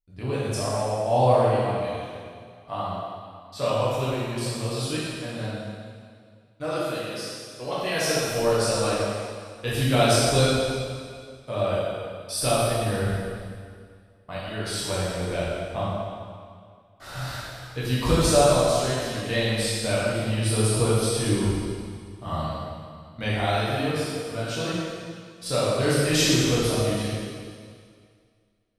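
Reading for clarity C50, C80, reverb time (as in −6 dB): −3.5 dB, −1.0 dB, 2.1 s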